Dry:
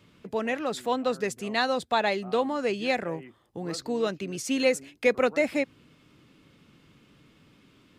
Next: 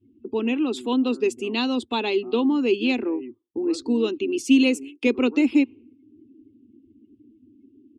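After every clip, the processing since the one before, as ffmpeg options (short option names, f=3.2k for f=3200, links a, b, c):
-af "afftdn=nr=34:nf=-50,firequalizer=gain_entry='entry(110,0);entry(160,-29);entry(230,10);entry(360,13);entry(590,-13);entry(920,-1);entry(1800,-14);entry(2700,8);entry(4200,-1)':delay=0.05:min_phase=1,volume=1dB"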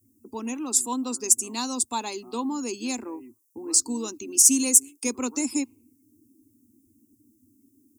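-af "equalizer=f=100:t=o:w=0.67:g=4,equalizer=f=400:t=o:w=0.67:g=-8,equalizer=f=1k:t=o:w=0.67:g=8,equalizer=f=4k:t=o:w=0.67:g=-11,aexciter=amount=14.4:drive=10:freq=4.9k,volume=-6.5dB"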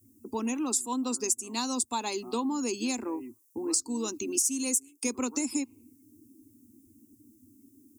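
-af "acompressor=threshold=-31dB:ratio=4,volume=3.5dB"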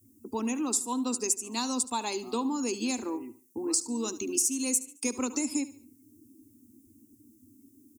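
-af "aecho=1:1:73|146|219:0.15|0.0554|0.0205"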